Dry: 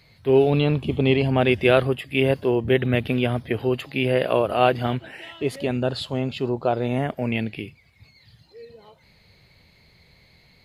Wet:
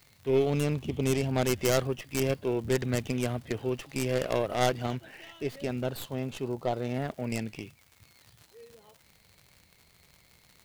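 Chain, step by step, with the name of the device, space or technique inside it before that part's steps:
record under a worn stylus (stylus tracing distortion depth 0.43 ms; surface crackle 120 per second −33 dBFS; white noise bed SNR 38 dB)
level −8.5 dB

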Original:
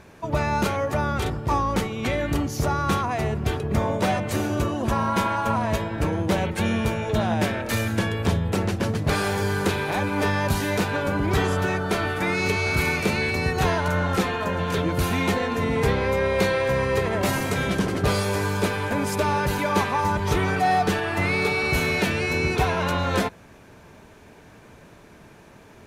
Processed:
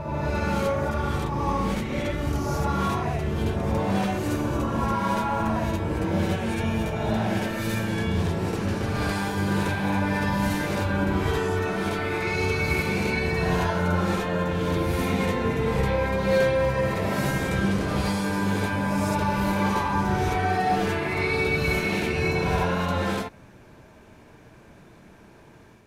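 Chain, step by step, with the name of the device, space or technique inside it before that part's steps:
reverse reverb (reversed playback; convolution reverb RT60 1.7 s, pre-delay 43 ms, DRR −4 dB; reversed playback)
level −8.5 dB

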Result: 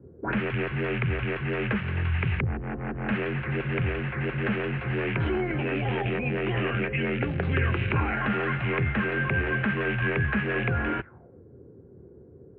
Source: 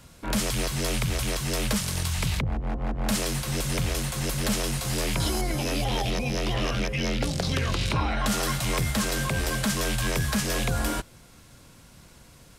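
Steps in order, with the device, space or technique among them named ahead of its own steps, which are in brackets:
envelope filter bass rig (envelope-controlled low-pass 370–2,700 Hz up, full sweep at −25 dBFS; loudspeaker in its box 65–2,000 Hz, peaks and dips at 83 Hz +5 dB, 120 Hz +3 dB, 380 Hz +8 dB, 620 Hz −5 dB, 1,000 Hz −4 dB, 1,600 Hz +5 dB)
level −1 dB

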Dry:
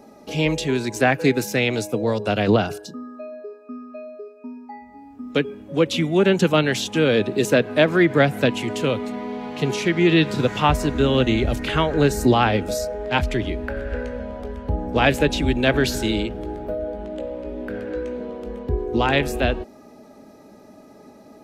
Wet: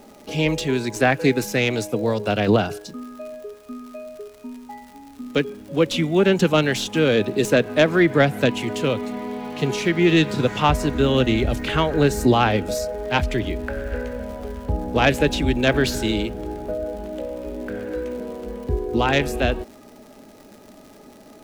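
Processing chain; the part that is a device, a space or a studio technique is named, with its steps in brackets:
record under a worn stylus (stylus tracing distortion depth 0.025 ms; surface crackle 140 per second −36 dBFS; pink noise bed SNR 36 dB)

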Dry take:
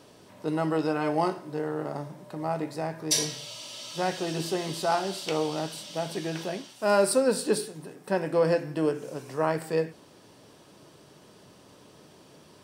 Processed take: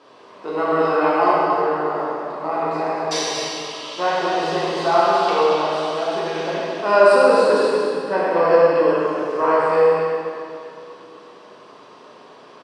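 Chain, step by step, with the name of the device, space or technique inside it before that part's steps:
station announcement (band-pass filter 330–3,700 Hz; parametric band 1,100 Hz +9.5 dB 0.28 octaves; loudspeakers that aren't time-aligned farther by 34 metres −9 dB, 80 metres −7 dB; convolution reverb RT60 2.5 s, pre-delay 6 ms, DRR −7 dB)
0:05.30–0:05.84: low-pass filter 12,000 Hz
level +2 dB

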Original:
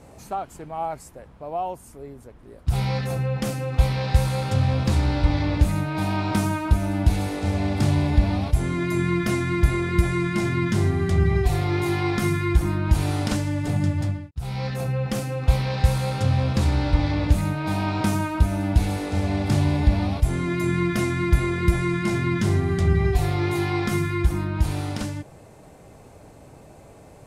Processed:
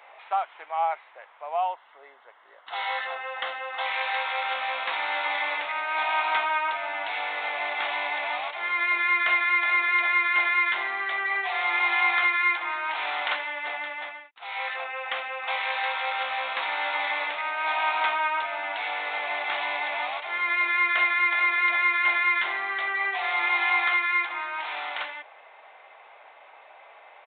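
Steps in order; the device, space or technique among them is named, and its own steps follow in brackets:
musical greeting card (downsampling to 8,000 Hz; high-pass filter 790 Hz 24 dB per octave; parametric band 2,100 Hz +6 dB 0.29 octaves)
0:01.68–0:03.86: notch filter 2,400 Hz, Q 5.2
level +6 dB

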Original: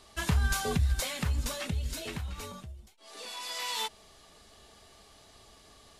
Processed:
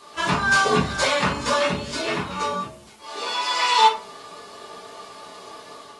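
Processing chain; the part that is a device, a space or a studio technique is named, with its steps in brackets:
filmed off a television (band-pass filter 240–6,400 Hz; parametric band 1,100 Hz +9.5 dB 0.59 octaves; convolution reverb RT60 0.40 s, pre-delay 3 ms, DRR −6 dB; white noise bed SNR 29 dB; automatic gain control gain up to 3.5 dB; level +3 dB; AAC 32 kbit/s 24,000 Hz)

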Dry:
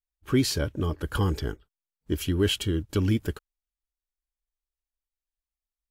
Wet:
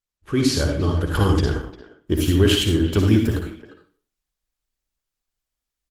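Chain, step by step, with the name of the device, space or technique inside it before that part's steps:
0:01.45–0:02.52: noise gate −52 dBFS, range −10 dB
mains-hum notches 60/120/180/240/300 Hz
speakerphone in a meeting room (convolution reverb RT60 0.45 s, pre-delay 51 ms, DRR 2 dB; far-end echo of a speakerphone 350 ms, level −16 dB; automatic gain control gain up to 7.5 dB; Opus 16 kbit/s 48,000 Hz)

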